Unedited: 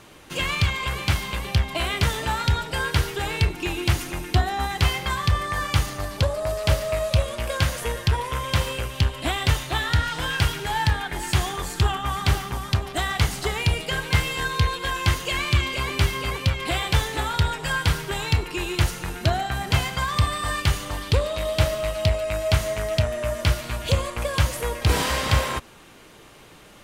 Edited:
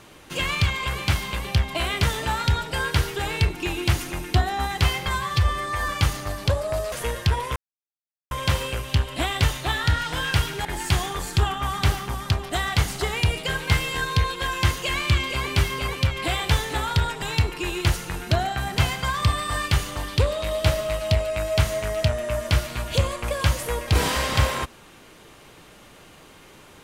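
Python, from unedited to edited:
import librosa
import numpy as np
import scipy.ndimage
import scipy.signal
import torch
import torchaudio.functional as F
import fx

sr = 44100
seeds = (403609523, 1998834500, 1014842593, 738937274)

y = fx.edit(x, sr, fx.stretch_span(start_s=5.08, length_s=0.54, factor=1.5),
    fx.cut(start_s=6.65, length_s=1.08),
    fx.insert_silence(at_s=8.37, length_s=0.75),
    fx.cut(start_s=10.71, length_s=0.37),
    fx.cut(start_s=17.65, length_s=0.51), tone=tone)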